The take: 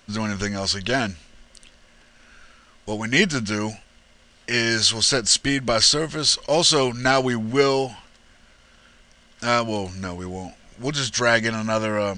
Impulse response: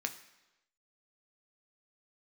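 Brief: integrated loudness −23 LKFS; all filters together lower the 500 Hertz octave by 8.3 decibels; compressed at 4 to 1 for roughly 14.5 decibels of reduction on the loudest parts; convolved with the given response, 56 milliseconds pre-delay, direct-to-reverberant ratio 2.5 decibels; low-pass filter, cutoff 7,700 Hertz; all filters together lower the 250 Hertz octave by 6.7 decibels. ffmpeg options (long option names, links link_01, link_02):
-filter_complex "[0:a]lowpass=7700,equalizer=frequency=250:width_type=o:gain=-6,equalizer=frequency=500:width_type=o:gain=-9,acompressor=threshold=-32dB:ratio=4,asplit=2[link_01][link_02];[1:a]atrim=start_sample=2205,adelay=56[link_03];[link_02][link_03]afir=irnorm=-1:irlink=0,volume=-4.5dB[link_04];[link_01][link_04]amix=inputs=2:normalize=0,volume=9dB"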